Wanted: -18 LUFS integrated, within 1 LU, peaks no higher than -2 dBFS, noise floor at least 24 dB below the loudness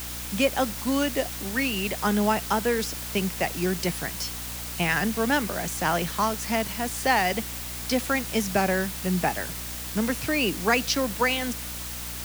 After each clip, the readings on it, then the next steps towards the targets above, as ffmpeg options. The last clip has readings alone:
hum 60 Hz; harmonics up to 300 Hz; hum level -37 dBFS; noise floor -35 dBFS; noise floor target -50 dBFS; loudness -26.0 LUFS; peak -8.5 dBFS; loudness target -18.0 LUFS
-> -af "bandreject=f=60:t=h:w=4,bandreject=f=120:t=h:w=4,bandreject=f=180:t=h:w=4,bandreject=f=240:t=h:w=4,bandreject=f=300:t=h:w=4"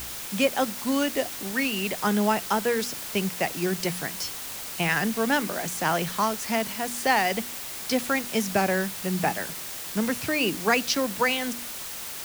hum none; noise floor -36 dBFS; noise floor target -50 dBFS
-> -af "afftdn=nr=14:nf=-36"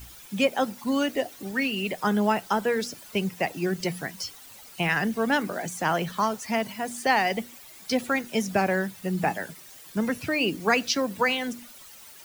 noise floor -48 dBFS; noise floor target -51 dBFS
-> -af "afftdn=nr=6:nf=-48"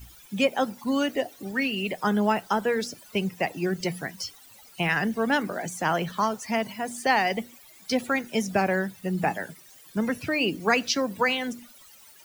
noise floor -52 dBFS; loudness -27.0 LUFS; peak -9.0 dBFS; loudness target -18.0 LUFS
-> -af "volume=9dB,alimiter=limit=-2dB:level=0:latency=1"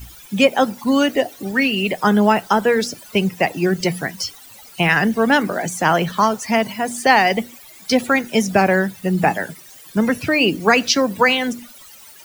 loudness -18.0 LUFS; peak -2.0 dBFS; noise floor -43 dBFS

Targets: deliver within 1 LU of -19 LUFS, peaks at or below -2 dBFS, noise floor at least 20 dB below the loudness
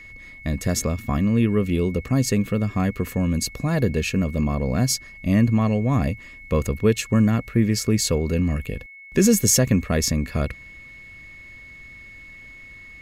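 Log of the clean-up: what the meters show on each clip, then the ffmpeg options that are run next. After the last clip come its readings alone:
steady tone 2200 Hz; tone level -41 dBFS; loudness -22.0 LUFS; peak -5.5 dBFS; loudness target -19.0 LUFS
-> -af "bandreject=f=2.2k:w=30"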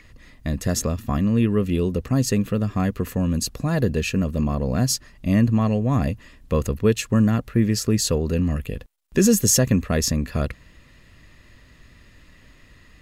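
steady tone none; loudness -22.0 LUFS; peak -5.5 dBFS; loudness target -19.0 LUFS
-> -af "volume=3dB"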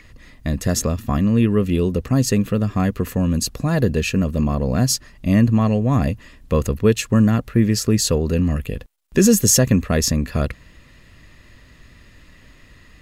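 loudness -19.0 LUFS; peak -2.5 dBFS; noise floor -49 dBFS

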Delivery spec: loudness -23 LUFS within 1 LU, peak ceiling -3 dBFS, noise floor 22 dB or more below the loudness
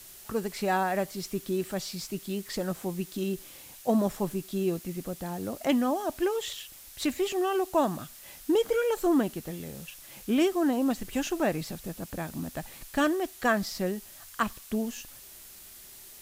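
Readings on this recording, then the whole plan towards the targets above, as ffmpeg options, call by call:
noise floor -49 dBFS; noise floor target -52 dBFS; loudness -30.0 LUFS; peak -12.5 dBFS; loudness target -23.0 LUFS
-> -af "afftdn=nr=6:nf=-49"
-af "volume=7dB"

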